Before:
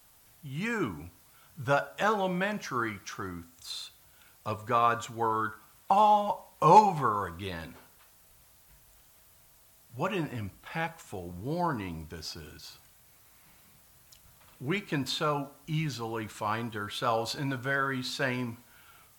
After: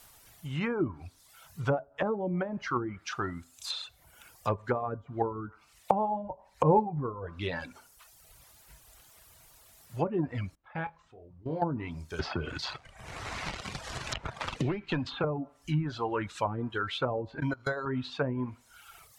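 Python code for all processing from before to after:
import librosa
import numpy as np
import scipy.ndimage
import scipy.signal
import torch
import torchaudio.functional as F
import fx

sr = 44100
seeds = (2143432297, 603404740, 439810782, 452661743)

y = fx.chain(x, sr, fx.level_steps(step_db=18),
    fx.spacing_loss(db_at_10k=38),
    fx.room_flutter(wall_m=4.3, rt60_s=0.2), at=(10.55, 11.62))
y = fx.chain(y, sr, fx.air_absorb(metres=85.0),
    fx.leveller(passes=2),
    fx.band_squash(depth_pct=100), at=(12.19, 15.24))
y = fx.chain(y, sr, fx.air_absorb(metres=51.0),
    fx.level_steps(step_db=16),
    fx.resample_bad(factor=8, down='filtered', up='hold'), at=(17.4, 17.86))
y = fx.peak_eq(y, sr, hz=200.0, db=-4.0, octaves=1.5)
y = fx.dereverb_blind(y, sr, rt60_s=0.88)
y = fx.env_lowpass_down(y, sr, base_hz=380.0, full_db=-28.0)
y = y * 10.0 ** (6.5 / 20.0)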